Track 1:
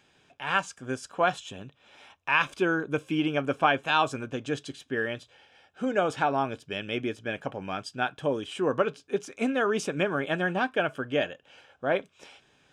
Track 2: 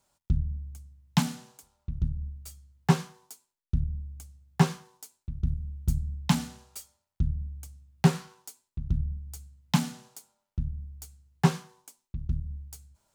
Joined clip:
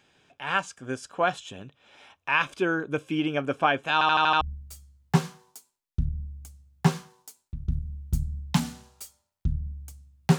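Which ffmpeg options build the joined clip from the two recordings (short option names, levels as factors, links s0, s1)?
-filter_complex "[0:a]apad=whole_dur=10.38,atrim=end=10.38,asplit=6[s0][s1][s2][s3][s4][s5];[s0]atrim=end=4.012[s6];[s1]atrim=start=3.928:end=4.012[s7];[s2]atrim=start=3.928:end=4.012[s8];[s3]atrim=start=3.928:end=4.012[s9];[s4]atrim=start=3.928:end=4.012[s10];[s5]atrim=start=3.928:end=4.012[s11];[1:a]atrim=start=2.158:end=8.13[s12];[s6][s7]acrossfade=d=0.004:c1=hsin:c2=hsin[s13];[s13][s8]acrossfade=d=0.004:c1=hsin:c2=hsin[s14];[s14][s9]acrossfade=d=0.004:c1=hsin:c2=hsin[s15];[s15][s10]acrossfade=d=0.004:c1=hsin:c2=hsin[s16];[s16][s11]acrossfade=d=0.004:c1=hsin:c2=hsin[s17];[s17][s12]acrossfade=d=0.004:c1=hsin:c2=hsin"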